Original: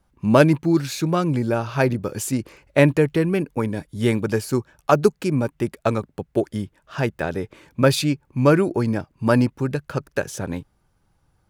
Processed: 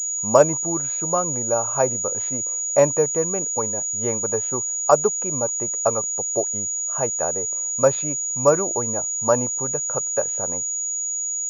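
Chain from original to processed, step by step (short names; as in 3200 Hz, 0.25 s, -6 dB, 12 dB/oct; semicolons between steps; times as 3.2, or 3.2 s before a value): band shelf 750 Hz +13 dB; pulse-width modulation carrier 6800 Hz; gain -10.5 dB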